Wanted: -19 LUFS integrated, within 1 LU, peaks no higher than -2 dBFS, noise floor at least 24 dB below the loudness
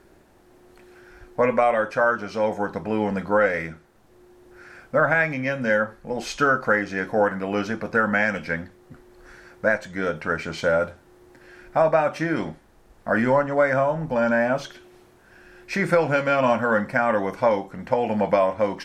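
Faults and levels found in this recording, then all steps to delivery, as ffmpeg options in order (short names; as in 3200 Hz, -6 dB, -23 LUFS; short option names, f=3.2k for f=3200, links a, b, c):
loudness -22.5 LUFS; peak -6.5 dBFS; loudness target -19.0 LUFS
-> -af "volume=3.5dB"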